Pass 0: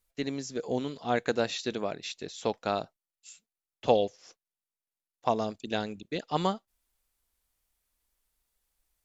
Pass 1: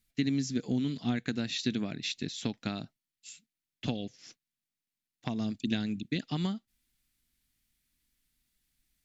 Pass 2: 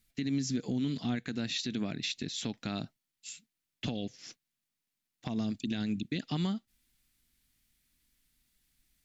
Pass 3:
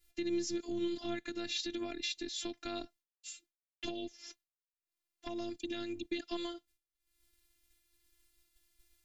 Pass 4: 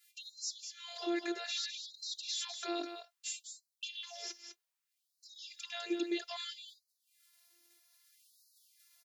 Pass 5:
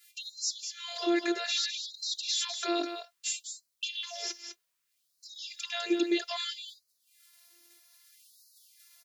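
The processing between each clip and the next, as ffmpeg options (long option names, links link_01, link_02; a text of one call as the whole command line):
ffmpeg -i in.wav -af "acompressor=threshold=-31dB:ratio=5,equalizer=frequency=125:width_type=o:width=1:gain=9,equalizer=frequency=250:width_type=o:width=1:gain=11,equalizer=frequency=500:width_type=o:width=1:gain=-10,equalizer=frequency=1000:width_type=o:width=1:gain=-8,equalizer=frequency=2000:width_type=o:width=1:gain=5,equalizer=frequency=4000:width_type=o:width=1:gain=4" out.wav
ffmpeg -i in.wav -af "alimiter=level_in=3dB:limit=-24dB:level=0:latency=1:release=121,volume=-3dB,volume=3.5dB" out.wav
ffmpeg -i in.wav -af "acompressor=mode=upward:threshold=-53dB:ratio=2.5,afftfilt=real='hypot(re,im)*cos(PI*b)':imag='0':win_size=512:overlap=0.75,agate=range=-33dB:threshold=-60dB:ratio=3:detection=peak,volume=1dB" out.wav
ffmpeg -i in.wav -af "alimiter=level_in=7dB:limit=-24dB:level=0:latency=1:release=11,volume=-7dB,aecho=1:1:203:0.398,afftfilt=real='re*gte(b*sr/1024,290*pow(3900/290,0.5+0.5*sin(2*PI*0.62*pts/sr)))':imag='im*gte(b*sr/1024,290*pow(3900/290,0.5+0.5*sin(2*PI*0.62*pts/sr)))':win_size=1024:overlap=0.75,volume=7dB" out.wav
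ffmpeg -i in.wav -af "asuperstop=centerf=820:order=4:qfactor=5.7,volume=7.5dB" out.wav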